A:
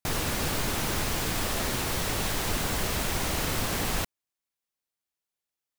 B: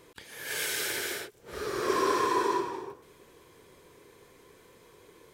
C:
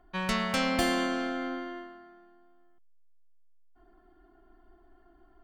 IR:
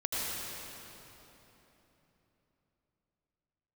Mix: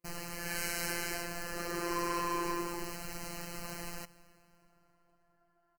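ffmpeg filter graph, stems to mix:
-filter_complex "[0:a]alimiter=limit=-20dB:level=0:latency=1:release=147,volume=-8.5dB,asplit=2[a][b];[b]volume=-23.5dB[c];[1:a]agate=range=-31dB:threshold=-50dB:ratio=16:detection=peak,asoftclip=type=tanh:threshold=-29dB,volume=0.5dB[d];[2:a]acompressor=threshold=-32dB:ratio=6,highpass=700,adelay=350,volume=-8dB,asplit=2[e][f];[f]volume=-8.5dB[g];[3:a]atrim=start_sample=2205[h];[c][g]amix=inputs=2:normalize=0[i];[i][h]afir=irnorm=-1:irlink=0[j];[a][d][e][j]amix=inputs=4:normalize=0,afftfilt=real='hypot(re,im)*cos(PI*b)':imag='0':win_size=1024:overlap=0.75,asuperstop=centerf=3500:order=12:qfactor=4"

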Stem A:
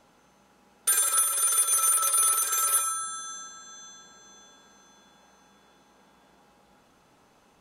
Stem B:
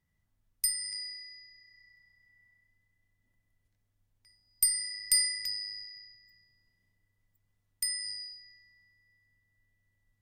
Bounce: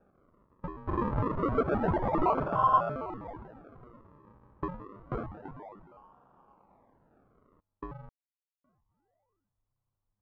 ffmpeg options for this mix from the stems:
-filter_complex "[0:a]volume=-6dB[a];[1:a]volume=-10dB,asplit=3[b][c][d];[b]atrim=end=8.09,asetpts=PTS-STARTPTS,afade=t=out:st=8.086:d=0.004:c=hsin[e];[c]atrim=start=8.09:end=8.64,asetpts=PTS-STARTPTS,volume=0[f];[d]atrim=start=8.64,asetpts=PTS-STARTPTS,afade=t=in:d=0.004:c=hsin[g];[e][f][g]concat=n=3:v=0:a=1[h];[a][h]amix=inputs=2:normalize=0,acrusher=samples=42:mix=1:aa=0.000001:lfo=1:lforange=42:lforate=0.28,lowpass=f=1.1k:t=q:w=2.6"

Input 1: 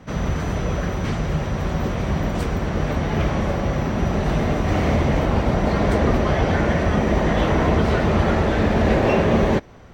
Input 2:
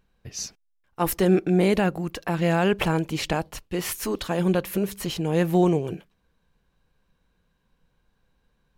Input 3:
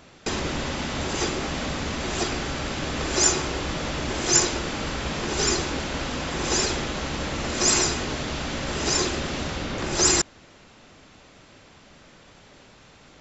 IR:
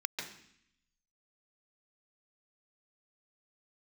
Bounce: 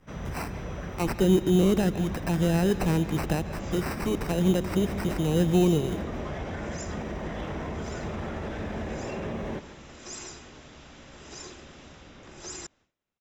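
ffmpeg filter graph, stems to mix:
-filter_complex "[0:a]volume=-13dB,asplit=2[a][b];[b]volume=-16dB[c];[1:a]acrusher=samples=13:mix=1:aa=0.000001,asoftclip=type=tanh:threshold=-12dB,volume=0.5dB,asplit=2[d][e];[e]volume=-14dB[f];[2:a]adelay=2450,volume=-19dB[g];[a][g]amix=inputs=2:normalize=0,agate=range=-33dB:threshold=-57dB:ratio=3:detection=peak,alimiter=level_in=2dB:limit=-24dB:level=0:latency=1,volume=-2dB,volume=0dB[h];[3:a]atrim=start_sample=2205[i];[c][f]amix=inputs=2:normalize=0[j];[j][i]afir=irnorm=-1:irlink=0[k];[d][h][k]amix=inputs=3:normalize=0,bandreject=f=4.4k:w=8.5,acrossover=split=410[l][m];[m]acompressor=threshold=-36dB:ratio=2[n];[l][n]amix=inputs=2:normalize=0"

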